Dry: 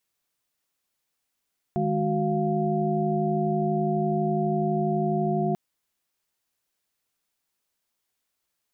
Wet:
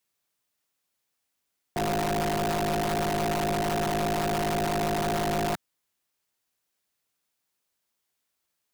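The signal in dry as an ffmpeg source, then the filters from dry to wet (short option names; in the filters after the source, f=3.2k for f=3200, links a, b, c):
-f lavfi -i "aevalsrc='0.0422*(sin(2*PI*155.56*t)+sin(2*PI*207.65*t)+sin(2*PI*369.99*t)+sin(2*PI*698.46*t))':d=3.79:s=44100"
-filter_complex "[0:a]highpass=f=43:p=1,acrossover=split=140|480[a][b][c];[b]aeval=exprs='(mod(17.8*val(0)+1,2)-1)/17.8':c=same[d];[a][d][c]amix=inputs=3:normalize=0"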